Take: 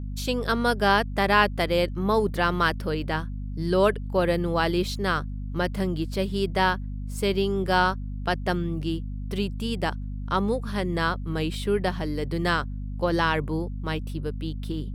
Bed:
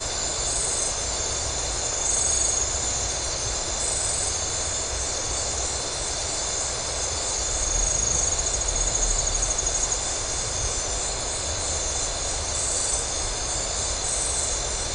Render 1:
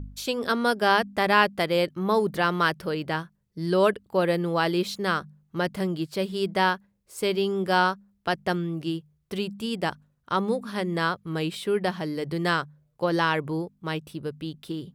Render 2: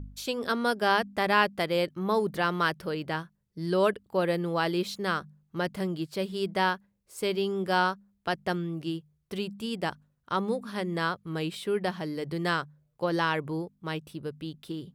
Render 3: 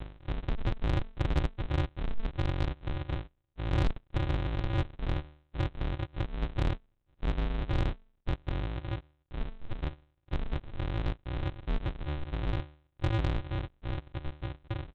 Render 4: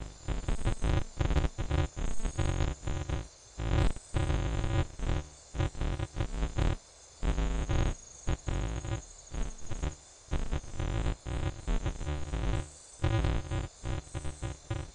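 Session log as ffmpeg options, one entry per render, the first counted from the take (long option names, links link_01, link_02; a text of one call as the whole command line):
ffmpeg -i in.wav -af "bandreject=frequency=50:width_type=h:width=4,bandreject=frequency=100:width_type=h:width=4,bandreject=frequency=150:width_type=h:width=4,bandreject=frequency=200:width_type=h:width=4,bandreject=frequency=250:width_type=h:width=4" out.wav
ffmpeg -i in.wav -af "volume=-3.5dB" out.wav
ffmpeg -i in.wav -af "aresample=8000,acrusher=samples=36:mix=1:aa=0.000001,aresample=44100,asoftclip=type=tanh:threshold=-21dB" out.wav
ffmpeg -i in.wav -i bed.wav -filter_complex "[1:a]volume=-27.5dB[link_01];[0:a][link_01]amix=inputs=2:normalize=0" out.wav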